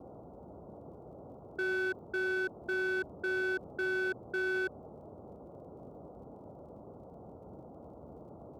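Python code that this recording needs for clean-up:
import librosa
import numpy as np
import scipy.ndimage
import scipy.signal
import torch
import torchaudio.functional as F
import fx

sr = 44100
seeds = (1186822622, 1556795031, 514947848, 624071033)

y = fx.fix_declip(x, sr, threshold_db=-28.5)
y = fx.fix_declick_ar(y, sr, threshold=6.5)
y = fx.noise_reduce(y, sr, print_start_s=6.92, print_end_s=7.42, reduce_db=30.0)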